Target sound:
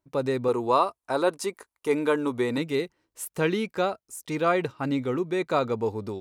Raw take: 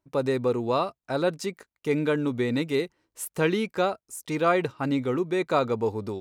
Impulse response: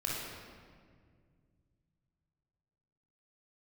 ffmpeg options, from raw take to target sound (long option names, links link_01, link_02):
-filter_complex "[0:a]asettb=1/sr,asplit=3[link_01][link_02][link_03];[link_01]atrim=end=0.484[link_04];[link_02]atrim=start=0.48:end=2.58,asetpts=PTS-STARTPTS,afade=type=in:duration=0.004:curve=qsin,afade=type=out:start_time=2.096:duration=0.004:curve=qsin,equalizer=frequency=160:width_type=o:width=0.67:gain=-10,equalizer=frequency=400:width_type=o:width=0.67:gain=3,equalizer=frequency=1000:width_type=o:width=0.67:gain=9,equalizer=frequency=10000:width_type=o:width=0.67:gain=10[link_05];[link_03]atrim=start=2.576[link_06];[link_04][link_05]acrossfade=duration=0.004:curve1=hsin:curve2=qsin[link_07];[link_07][link_06]acrossfade=duration=0.004:curve1=qsin:curve2=hsin,volume=-1dB"